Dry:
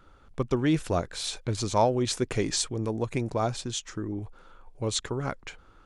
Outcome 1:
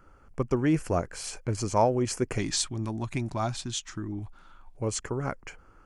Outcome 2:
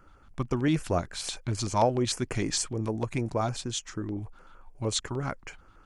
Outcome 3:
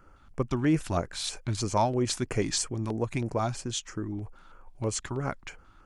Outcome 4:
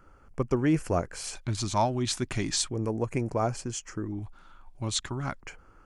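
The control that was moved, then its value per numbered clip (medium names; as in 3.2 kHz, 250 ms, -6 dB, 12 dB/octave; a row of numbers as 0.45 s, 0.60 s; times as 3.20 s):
LFO notch, rate: 0.21 Hz, 6.6 Hz, 3.1 Hz, 0.37 Hz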